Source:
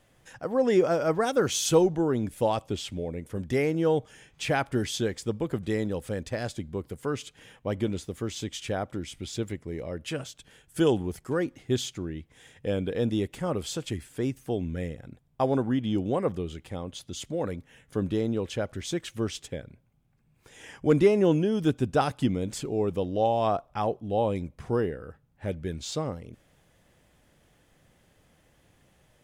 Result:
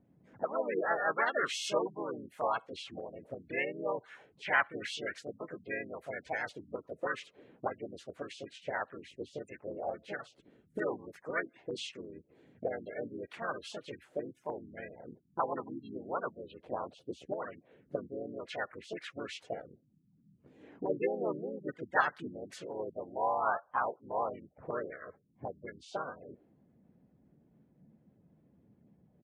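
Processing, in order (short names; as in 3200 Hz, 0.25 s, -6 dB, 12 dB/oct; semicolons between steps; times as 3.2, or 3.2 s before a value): spectral gate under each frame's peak -20 dB strong; harmoniser -3 st -6 dB, +3 st -11 dB, +4 st -3 dB; auto-wah 200–1700 Hz, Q 2.2, up, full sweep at -25.5 dBFS; gain +3.5 dB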